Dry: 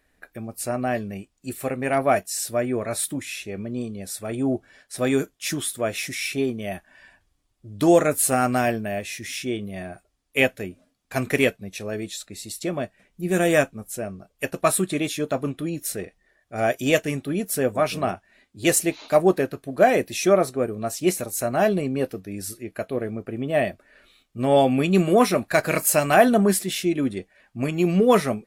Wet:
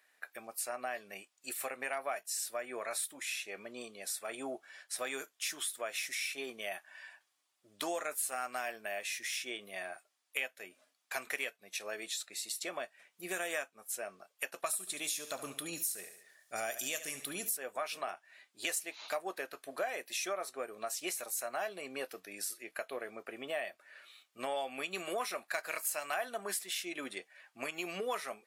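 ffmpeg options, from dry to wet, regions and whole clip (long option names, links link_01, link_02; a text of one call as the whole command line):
ffmpeg -i in.wav -filter_complex "[0:a]asettb=1/sr,asplit=3[link_01][link_02][link_03];[link_01]atrim=end=14.664[link_04];[link_02]atrim=start=14.66:end=17.57,asetpts=PTS-STARTPTS,afade=type=in:duration=0.004:curve=qsin,afade=type=out:start_time=2.906:duration=0.004:curve=qsin,bass=frequency=250:gain=12,treble=frequency=4000:gain=13,acompressor=threshold=-19dB:ratio=2.5:attack=3.2:release=140:knee=1:detection=peak,aecho=1:1:71|142|213|284:0.2|0.0818|0.0335|0.0138,atrim=end_sample=128331[link_05];[link_03]atrim=start=17.566[link_06];[link_04][link_05]acrossfade=duration=0.004:curve1=hsin:curve2=qsin[link_07];[link_07][link_06]acrossfade=duration=0.004:curve1=qsin:curve2=hsin,highpass=870,acompressor=threshold=-36dB:ratio=4" out.wav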